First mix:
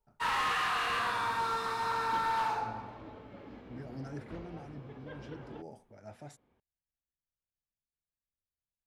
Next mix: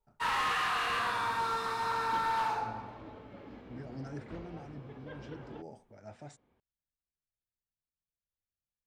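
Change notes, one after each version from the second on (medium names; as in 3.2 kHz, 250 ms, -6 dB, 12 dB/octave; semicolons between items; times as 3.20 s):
speech: add brick-wall FIR low-pass 9.2 kHz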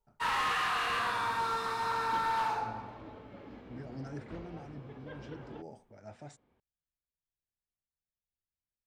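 no change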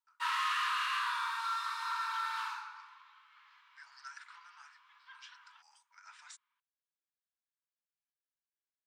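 speech +8.5 dB; master: add rippled Chebyshev high-pass 960 Hz, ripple 3 dB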